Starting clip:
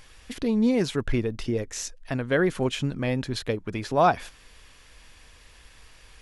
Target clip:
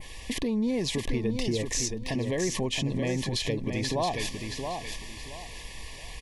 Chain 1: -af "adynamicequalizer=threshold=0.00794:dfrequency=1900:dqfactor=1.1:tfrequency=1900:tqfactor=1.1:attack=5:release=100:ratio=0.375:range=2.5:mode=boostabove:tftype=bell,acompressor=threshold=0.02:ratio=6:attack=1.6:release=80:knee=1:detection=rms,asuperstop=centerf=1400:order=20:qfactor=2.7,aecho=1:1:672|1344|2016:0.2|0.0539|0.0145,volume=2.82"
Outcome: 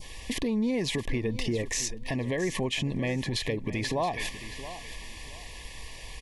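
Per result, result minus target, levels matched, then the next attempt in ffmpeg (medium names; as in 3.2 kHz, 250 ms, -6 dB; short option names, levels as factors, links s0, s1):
echo-to-direct -8 dB; 2 kHz band +2.5 dB
-af "adynamicequalizer=threshold=0.00794:dfrequency=1900:dqfactor=1.1:tfrequency=1900:tqfactor=1.1:attack=5:release=100:ratio=0.375:range=2.5:mode=boostabove:tftype=bell,acompressor=threshold=0.02:ratio=6:attack=1.6:release=80:knee=1:detection=rms,asuperstop=centerf=1400:order=20:qfactor=2.7,aecho=1:1:672|1344|2016:0.501|0.135|0.0365,volume=2.82"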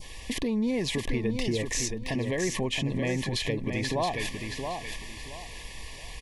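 2 kHz band +3.0 dB
-af "adynamicequalizer=threshold=0.00794:dfrequency=5400:dqfactor=1.1:tfrequency=5400:tqfactor=1.1:attack=5:release=100:ratio=0.375:range=2.5:mode=boostabove:tftype=bell,acompressor=threshold=0.02:ratio=6:attack=1.6:release=80:knee=1:detection=rms,asuperstop=centerf=1400:order=20:qfactor=2.7,aecho=1:1:672|1344|2016:0.501|0.135|0.0365,volume=2.82"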